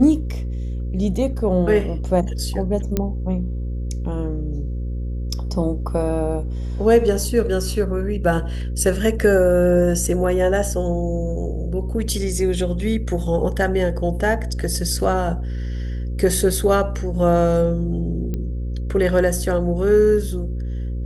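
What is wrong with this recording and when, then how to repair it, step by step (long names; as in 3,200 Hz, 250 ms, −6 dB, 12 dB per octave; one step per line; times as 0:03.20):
mains buzz 60 Hz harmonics 9 −25 dBFS
0:02.97: click −7 dBFS
0:18.34: click −15 dBFS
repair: click removal
hum removal 60 Hz, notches 9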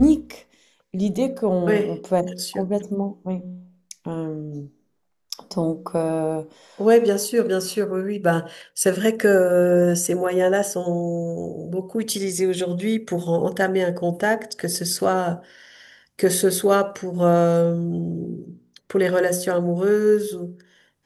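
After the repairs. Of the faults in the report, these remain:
none of them is left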